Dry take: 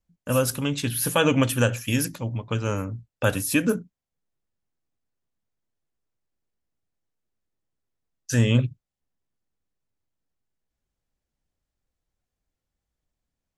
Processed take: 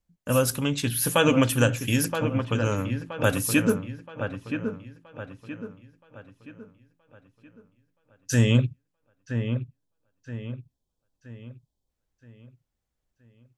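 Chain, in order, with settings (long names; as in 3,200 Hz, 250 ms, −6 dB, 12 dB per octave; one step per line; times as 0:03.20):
time-frequency box erased 0:09.15–0:11.89, 1,100–3,000 Hz
delay with a low-pass on its return 973 ms, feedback 41%, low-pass 2,300 Hz, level −7.5 dB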